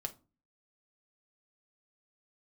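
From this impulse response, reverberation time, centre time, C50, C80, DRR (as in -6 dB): 0.35 s, 5 ms, 17.5 dB, 25.0 dB, 5.0 dB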